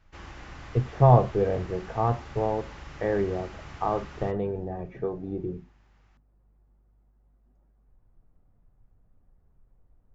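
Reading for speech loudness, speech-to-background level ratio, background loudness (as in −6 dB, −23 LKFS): −27.0 LKFS, 17.5 dB, −44.5 LKFS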